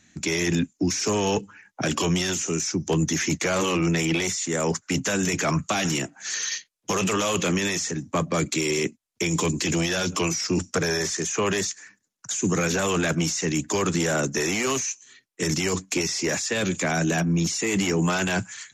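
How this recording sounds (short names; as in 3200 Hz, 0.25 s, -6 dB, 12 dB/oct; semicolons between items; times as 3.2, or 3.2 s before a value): noise floor -70 dBFS; spectral tilt -3.5 dB/oct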